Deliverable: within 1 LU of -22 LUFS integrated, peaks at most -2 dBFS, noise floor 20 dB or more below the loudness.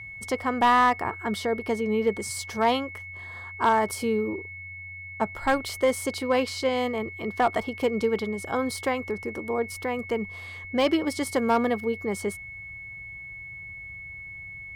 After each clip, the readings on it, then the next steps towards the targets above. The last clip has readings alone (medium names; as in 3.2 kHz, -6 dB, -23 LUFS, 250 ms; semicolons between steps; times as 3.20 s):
clipped samples 0.3%; clipping level -14.0 dBFS; steady tone 2.2 kHz; tone level -38 dBFS; loudness -26.5 LUFS; peak level -14.0 dBFS; loudness target -22.0 LUFS
-> clip repair -14 dBFS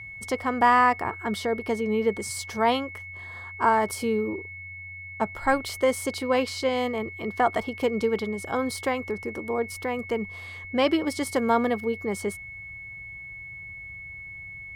clipped samples 0.0%; steady tone 2.2 kHz; tone level -38 dBFS
-> band-stop 2.2 kHz, Q 30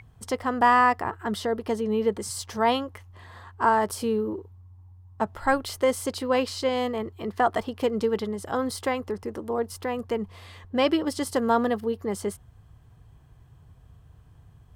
steady tone not found; loudness -26.5 LUFS; peak level -8.0 dBFS; loudness target -22.0 LUFS
-> trim +4.5 dB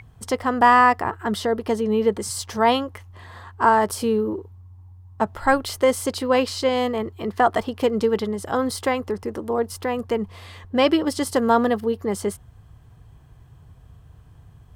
loudness -22.0 LUFS; peak level -3.5 dBFS; noise floor -49 dBFS